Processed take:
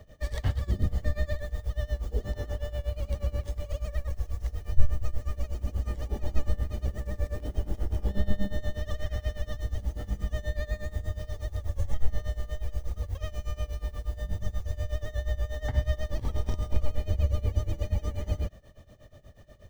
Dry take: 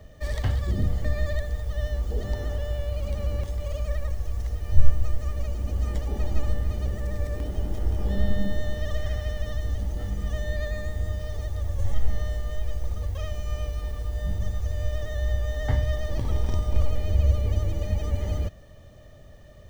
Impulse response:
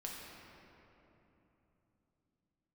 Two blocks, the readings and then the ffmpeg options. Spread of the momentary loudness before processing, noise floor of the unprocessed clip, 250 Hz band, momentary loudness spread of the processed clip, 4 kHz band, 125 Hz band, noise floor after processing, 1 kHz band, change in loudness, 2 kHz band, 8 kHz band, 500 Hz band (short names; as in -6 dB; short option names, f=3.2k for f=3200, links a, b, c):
5 LU, -47 dBFS, -4.0 dB, 6 LU, -4.0 dB, -4.0 dB, -50 dBFS, -4.0 dB, -4.0 dB, -4.0 dB, n/a, -4.0 dB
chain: -af "tremolo=f=8.3:d=0.89"